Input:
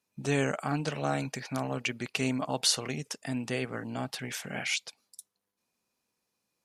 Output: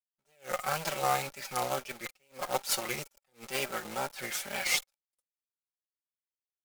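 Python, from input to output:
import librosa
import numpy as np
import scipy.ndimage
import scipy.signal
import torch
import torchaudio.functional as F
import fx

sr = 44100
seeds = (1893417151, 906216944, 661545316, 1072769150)

y = fx.lower_of_two(x, sr, delay_ms=5.3)
y = fx.quant_companded(y, sr, bits=4)
y = fx.low_shelf(y, sr, hz=330.0, db=-12.0)
y = fx.small_body(y, sr, hz=(550.0, 810.0, 1300.0, 2200.0), ring_ms=35, db=8)
y = fx.wow_flutter(y, sr, seeds[0], rate_hz=2.1, depth_cents=100.0)
y = fx.high_shelf(y, sr, hz=4700.0, db=6.5)
y = fx.attack_slew(y, sr, db_per_s=250.0)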